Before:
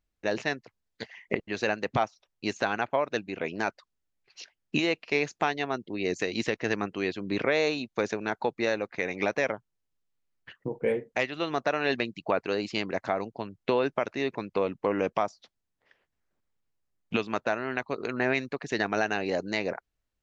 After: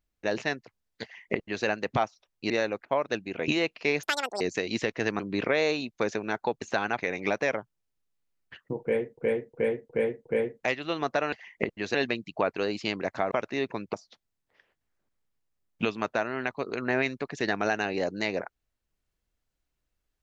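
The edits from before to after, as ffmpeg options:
-filter_complex "[0:a]asplit=17[s0][s1][s2][s3][s4][s5][s6][s7][s8][s9][s10][s11][s12][s13][s14][s15][s16];[s0]atrim=end=2.502[s17];[s1]atrim=start=8.588:end=8.942[s18];[s2]atrim=start=2.868:end=3.502[s19];[s3]atrim=start=4.748:end=5.304[s20];[s4]atrim=start=5.3:end=6.05,asetpts=PTS-STARTPTS,asetrate=88200,aresample=44100[s21];[s5]atrim=start=6.046:end=6.842[s22];[s6]atrim=start=7.168:end=8.592[s23];[s7]atrim=start=2.498:end=2.872[s24];[s8]atrim=start=8.938:end=11.132[s25];[s9]atrim=start=10.768:end=11.132[s26];[s10]atrim=start=10.768:end=11.132[s27];[s11]atrim=start=10.768:end=11.132[s28];[s12]atrim=start=10.768:end=11.842[s29];[s13]atrim=start=1.028:end=1.652[s30];[s14]atrim=start=11.838:end=13.212[s31];[s15]atrim=start=13.948:end=14.572[s32];[s16]atrim=start=15.248[s33];[s17][s18]acrossfade=d=0.004:c1=hsin:c2=hsin[s34];[s34][s19]acrossfade=d=0.004:c1=hsin:c2=hsin[s35];[s35][s20]acrossfade=d=0.004:c1=hsin:c2=hsin[s36];[s36][s21]acrossfade=d=0.004:c1=hsin:c2=hsin[s37];[s37][s22]acrossfade=d=0.004:c1=hsin:c2=hsin[s38];[s38][s23]acrossfade=d=0.004:c1=hsin:c2=hsin[s39];[s39][s24]acrossfade=d=0.004:c1=hsin:c2=hsin[s40];[s40][s25]acrossfade=d=0.004:c1=hsin:c2=hsin[s41];[s41][s26]acrossfade=d=0.004:c1=hsin:c2=hsin[s42];[s42][s27]acrossfade=d=0.004:c1=hsin:c2=hsin[s43];[s43][s28]acrossfade=d=0.004:c1=hsin:c2=hsin[s44];[s44][s29]acrossfade=d=0.004:c1=hsin:c2=hsin[s45];[s45][s30]acrossfade=d=0.004:c1=hsin:c2=hsin[s46];[s46][s31]acrossfade=d=0.004:c1=hsin:c2=hsin[s47];[s47][s32]acrossfade=d=0.004:c1=hsin:c2=hsin[s48];[s48][s33]acrossfade=d=0.004:c1=hsin:c2=hsin"

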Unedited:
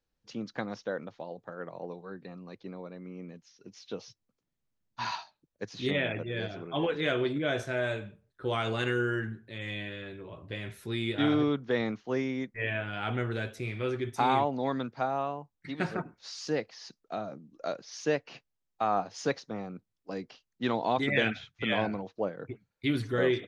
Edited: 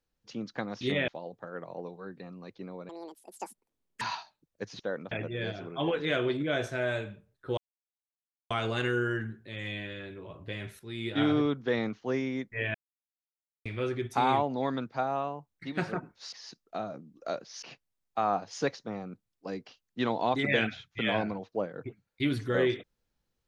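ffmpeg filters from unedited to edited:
-filter_complex "[0:a]asplit=13[s0][s1][s2][s3][s4][s5][s6][s7][s8][s9][s10][s11][s12];[s0]atrim=end=0.812[s13];[s1]atrim=start=5.798:end=6.072[s14];[s2]atrim=start=1.128:end=2.944[s15];[s3]atrim=start=2.94:end=5.02,asetpts=PTS-STARTPTS,asetrate=81585,aresample=44100[s16];[s4]atrim=start=5.016:end=5.802[s17];[s5]atrim=start=0.808:end=1.132[s18];[s6]atrim=start=6.068:end=8.53,asetpts=PTS-STARTPTS,afade=t=out:st=2.458:d=0.004:c=hsin,apad=pad_dur=0.93[s19];[s7]atrim=start=8.53:end=10.82,asetpts=PTS-STARTPTS,afade=t=in:d=0.004:c=hsin,afade=t=out:st=2.286:d=0.004:c=hsin:silence=0.223872[s20];[s8]atrim=start=10.82:end=12.77,asetpts=PTS-STARTPTS,afade=t=in:d=0.42:silence=0.223872,afade=t=out:st=1.946:d=0.004:c=hsin[s21];[s9]atrim=start=12.77:end=13.68,asetpts=PTS-STARTPTS,volume=0[s22];[s10]atrim=start=13.68:end=16.352,asetpts=PTS-STARTPTS,afade=t=in:d=0.004:c=hsin[s23];[s11]atrim=start=16.698:end=18.002[s24];[s12]atrim=start=18.258[s25];[s13][s14]acrossfade=d=0.004:c1=hsin:c2=hsin[s26];[s26][s15]acrossfade=d=0.004:c1=hsin:c2=hsin[s27];[s27][s16]acrossfade=d=0.004:c1=hsin:c2=hsin[s28];[s28][s17]acrossfade=d=0.004:c1=hsin:c2=hsin[s29];[s29][s18]acrossfade=d=0.004:c1=hsin:c2=hsin[s30];[s19][s20][s21][s22][s23]concat=n=5:v=0:a=1[s31];[s30][s31]acrossfade=d=0.004:c1=hsin:c2=hsin[s32];[s32][s24]acrossfade=d=0.004:c1=hsin:c2=hsin[s33];[s33][s25]acrossfade=d=0.004:c1=hsin:c2=hsin"

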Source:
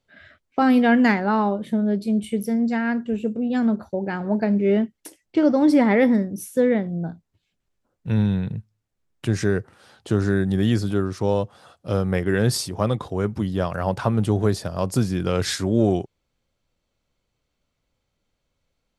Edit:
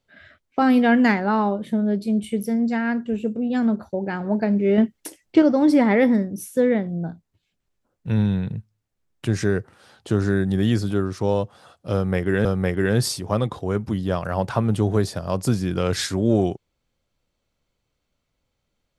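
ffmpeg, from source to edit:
-filter_complex "[0:a]asplit=4[s0][s1][s2][s3];[s0]atrim=end=4.782[s4];[s1]atrim=start=4.778:end=5.422,asetpts=PTS-STARTPTS,volume=1.78[s5];[s2]atrim=start=5.418:end=12.452[s6];[s3]atrim=start=11.938[s7];[s4][s5]acrossfade=d=0.004:c1=hsin:c2=hsin[s8];[s8][s6]acrossfade=d=0.004:c1=hsin:c2=hsin[s9];[s9][s7]acrossfade=d=0.004:c1=hsin:c2=hsin"

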